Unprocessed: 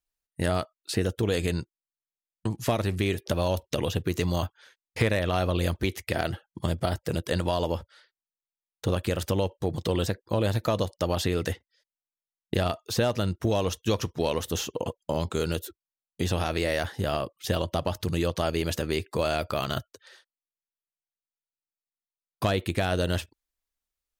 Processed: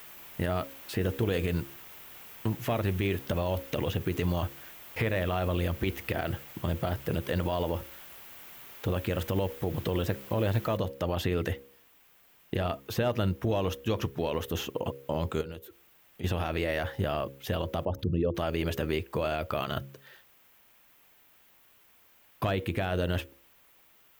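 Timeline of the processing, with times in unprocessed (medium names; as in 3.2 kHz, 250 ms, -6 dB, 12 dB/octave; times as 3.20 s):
10.77 s: noise floor step -46 dB -59 dB
15.41–16.24 s: compression 2:1, threshold -47 dBFS
17.85–18.36 s: resonances exaggerated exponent 2
whole clip: high-order bell 6.5 kHz -10 dB; de-hum 68.36 Hz, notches 8; peak limiter -18 dBFS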